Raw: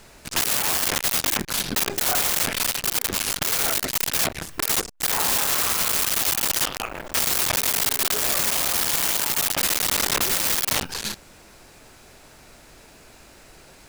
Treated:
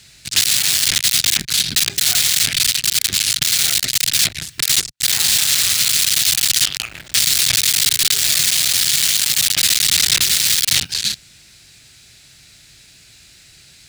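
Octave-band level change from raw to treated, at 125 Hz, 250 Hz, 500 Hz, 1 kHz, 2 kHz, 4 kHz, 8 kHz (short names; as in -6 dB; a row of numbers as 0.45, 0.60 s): +4.0, -3.0, -9.5, -8.0, +5.0, +11.5, +8.5 dB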